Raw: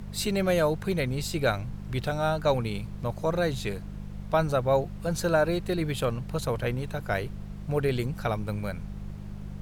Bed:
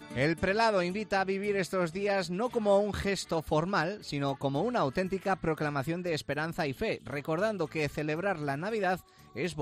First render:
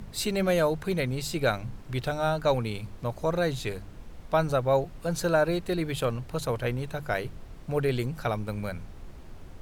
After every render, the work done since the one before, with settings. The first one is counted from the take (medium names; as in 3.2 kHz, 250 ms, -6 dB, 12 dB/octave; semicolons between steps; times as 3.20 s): de-hum 50 Hz, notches 4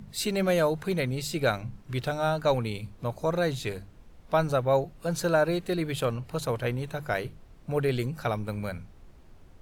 noise print and reduce 8 dB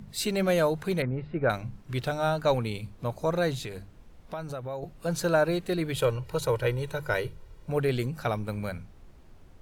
1.02–1.50 s: low-pass 1.8 kHz 24 dB/octave; 3.65–4.83 s: compression 4:1, threshold -34 dBFS; 5.95–7.70 s: comb 2.1 ms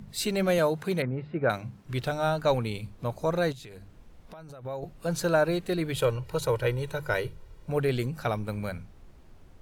0.58–1.84 s: high-pass 97 Hz; 3.52–4.65 s: compression, threshold -42 dBFS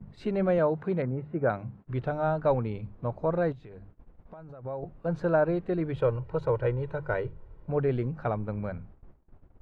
low-pass 1.3 kHz 12 dB/octave; gate -49 dBFS, range -23 dB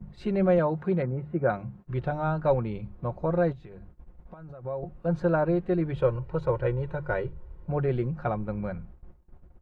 peaking EQ 61 Hz +11 dB 0.82 oct; comb 5.6 ms, depth 46%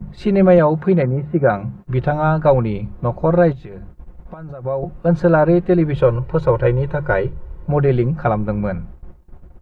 trim +11.5 dB; peak limiter -3 dBFS, peak gain reduction 2.5 dB